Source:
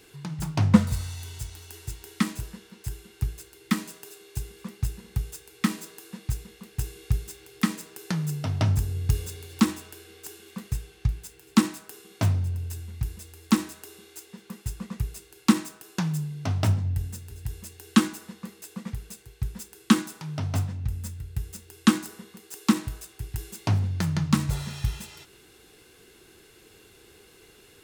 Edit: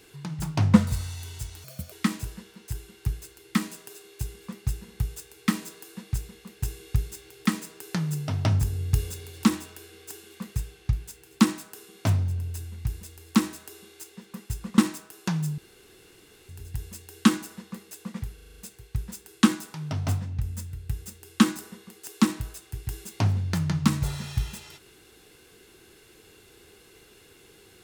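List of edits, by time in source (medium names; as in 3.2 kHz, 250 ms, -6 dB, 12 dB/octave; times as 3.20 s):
1.64–2.08 s: speed 157%
14.94–15.49 s: delete
16.29–17.20 s: room tone
19.05 s: stutter 0.04 s, 7 plays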